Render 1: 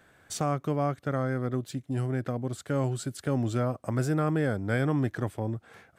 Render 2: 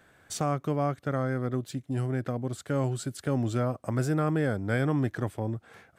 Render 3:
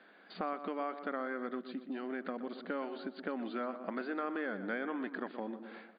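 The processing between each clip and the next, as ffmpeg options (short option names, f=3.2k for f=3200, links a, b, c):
-af anull
-filter_complex "[0:a]afftfilt=real='re*between(b*sr/4096,180,4800)':imag='im*between(b*sr/4096,180,4800)':win_size=4096:overlap=0.75,asplit=2[a][b];[b]adelay=121,lowpass=f=2.4k:p=1,volume=-12.5dB,asplit=2[c][d];[d]adelay=121,lowpass=f=2.4k:p=1,volume=0.46,asplit=2[e][f];[f]adelay=121,lowpass=f=2.4k:p=1,volume=0.46,asplit=2[g][h];[h]adelay=121,lowpass=f=2.4k:p=1,volume=0.46,asplit=2[i][j];[j]adelay=121,lowpass=f=2.4k:p=1,volume=0.46[k];[a][c][e][g][i][k]amix=inputs=6:normalize=0,acrossover=split=1100|2300[l][m][n];[l]acompressor=threshold=-38dB:ratio=4[o];[m]acompressor=threshold=-39dB:ratio=4[p];[n]acompressor=threshold=-59dB:ratio=4[q];[o][p][q]amix=inputs=3:normalize=0"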